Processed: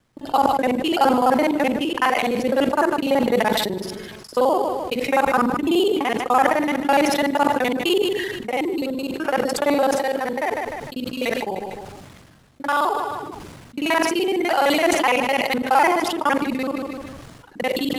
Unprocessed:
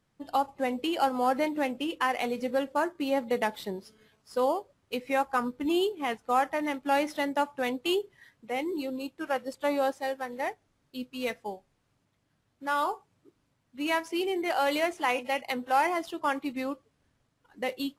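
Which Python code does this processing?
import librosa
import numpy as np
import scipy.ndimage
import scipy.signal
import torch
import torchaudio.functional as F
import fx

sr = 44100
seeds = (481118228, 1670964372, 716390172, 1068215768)

p1 = fx.local_reverse(x, sr, ms=42.0)
p2 = p1 + fx.echo_feedback(p1, sr, ms=151, feedback_pct=31, wet_db=-17.0, dry=0)
p3 = fx.sustainer(p2, sr, db_per_s=31.0)
y = p3 * 10.0 ** (8.0 / 20.0)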